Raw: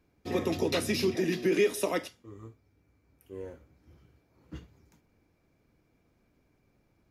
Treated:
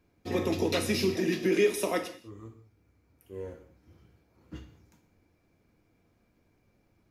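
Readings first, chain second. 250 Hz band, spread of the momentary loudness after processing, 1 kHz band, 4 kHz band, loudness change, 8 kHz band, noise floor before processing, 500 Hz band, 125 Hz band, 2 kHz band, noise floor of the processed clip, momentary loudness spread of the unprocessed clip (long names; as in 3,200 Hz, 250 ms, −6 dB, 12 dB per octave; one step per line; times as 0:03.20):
+1.0 dB, 22 LU, +1.0 dB, +1.0 dB, 0.0 dB, +1.0 dB, −71 dBFS, +0.5 dB, +1.5 dB, +1.0 dB, −70 dBFS, 22 LU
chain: reverb whose tail is shaped and stops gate 230 ms falling, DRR 6.5 dB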